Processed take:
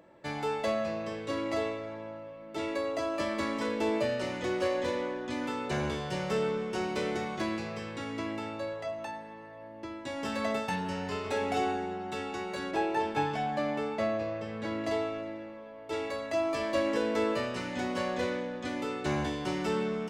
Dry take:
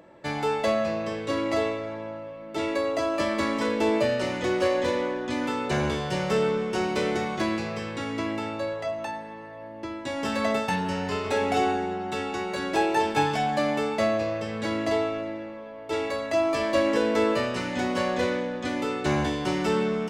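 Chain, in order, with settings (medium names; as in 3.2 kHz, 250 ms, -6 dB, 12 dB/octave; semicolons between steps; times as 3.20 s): 12.71–14.84 s: treble shelf 4.7 kHz -10.5 dB; trim -6 dB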